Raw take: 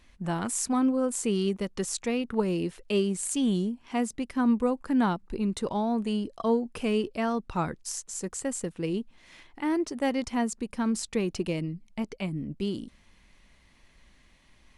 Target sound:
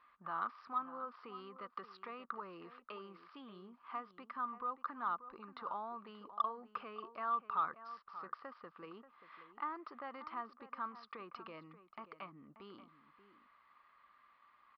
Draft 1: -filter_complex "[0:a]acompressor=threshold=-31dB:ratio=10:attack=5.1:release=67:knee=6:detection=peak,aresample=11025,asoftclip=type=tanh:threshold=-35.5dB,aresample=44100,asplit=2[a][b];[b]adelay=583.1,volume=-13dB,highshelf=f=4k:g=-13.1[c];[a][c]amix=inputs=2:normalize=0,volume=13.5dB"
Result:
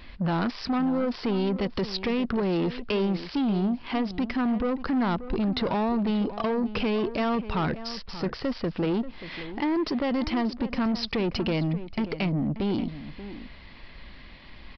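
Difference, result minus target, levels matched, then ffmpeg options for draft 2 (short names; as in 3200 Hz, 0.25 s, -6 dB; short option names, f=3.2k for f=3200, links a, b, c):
1000 Hz band -9.5 dB
-filter_complex "[0:a]acompressor=threshold=-31dB:ratio=10:attack=5.1:release=67:knee=6:detection=peak,bandpass=f=1.2k:t=q:w=12:csg=0,aresample=11025,asoftclip=type=tanh:threshold=-35.5dB,aresample=44100,asplit=2[a][b];[b]adelay=583.1,volume=-13dB,highshelf=f=4k:g=-13.1[c];[a][c]amix=inputs=2:normalize=0,volume=13.5dB"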